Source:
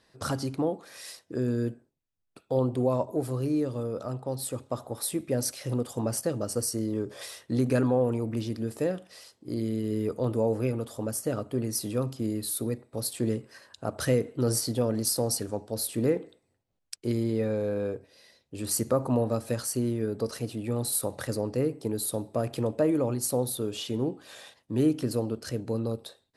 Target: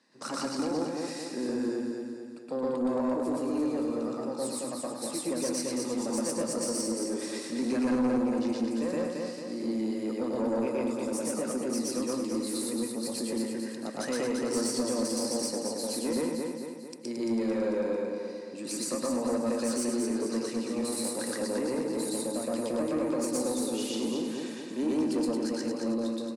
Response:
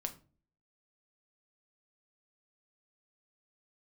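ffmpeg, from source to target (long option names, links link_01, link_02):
-filter_complex "[0:a]acrossover=split=310[link_01][link_02];[link_01]acompressor=threshold=-44dB:ratio=6[link_03];[link_02]alimiter=limit=-20.5dB:level=0:latency=1:release=300[link_04];[link_03][link_04]amix=inputs=2:normalize=0,aeval=exprs='0.112*(cos(1*acos(clip(val(0)/0.112,-1,1)))-cos(1*PI/2))+0.0224*(cos(2*acos(clip(val(0)/0.112,-1,1)))-cos(2*PI/2))':channel_layout=same,highpass=frequency=190:width=0.5412,highpass=frequency=190:width=1.3066,equalizer=frequency=250:width_type=q:width=4:gain=7,equalizer=frequency=430:width_type=q:width=4:gain=-5,equalizer=frequency=680:width_type=q:width=4:gain=-6,equalizer=frequency=1400:width_type=q:width=4:gain=-4,equalizer=frequency=3300:width_type=q:width=4:gain=-8,lowpass=frequency=9000:width=0.5412,lowpass=frequency=9000:width=1.3066,aecho=1:1:223|446|669|892|1115|1338|1561:0.596|0.31|0.161|0.0838|0.0436|0.0226|0.0118,asplit=2[link_05][link_06];[1:a]atrim=start_sample=2205,adelay=119[link_07];[link_06][link_07]afir=irnorm=-1:irlink=0,volume=3.5dB[link_08];[link_05][link_08]amix=inputs=2:normalize=0,asoftclip=type=tanh:threshold=-19.5dB,volume=-1.5dB"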